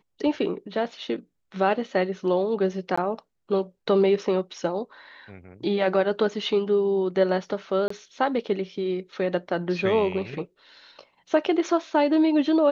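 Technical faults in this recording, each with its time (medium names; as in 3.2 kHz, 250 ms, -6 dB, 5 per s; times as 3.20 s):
2.96–2.98 s: dropout 15 ms
7.88–7.90 s: dropout 24 ms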